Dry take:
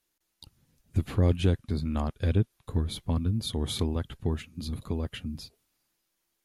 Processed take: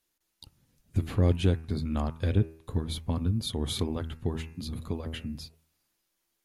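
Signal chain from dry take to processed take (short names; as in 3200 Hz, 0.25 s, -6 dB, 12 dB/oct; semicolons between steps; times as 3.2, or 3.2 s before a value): de-hum 80.52 Hz, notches 34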